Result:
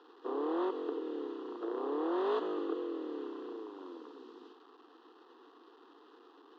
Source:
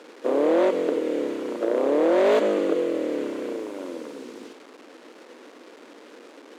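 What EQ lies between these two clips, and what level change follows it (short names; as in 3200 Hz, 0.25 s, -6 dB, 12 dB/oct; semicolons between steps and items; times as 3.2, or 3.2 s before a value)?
speaker cabinet 480–3400 Hz, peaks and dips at 520 Hz -10 dB, 900 Hz -5 dB, 1500 Hz -8 dB, 2100 Hz -6 dB; fixed phaser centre 610 Hz, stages 6; -2.5 dB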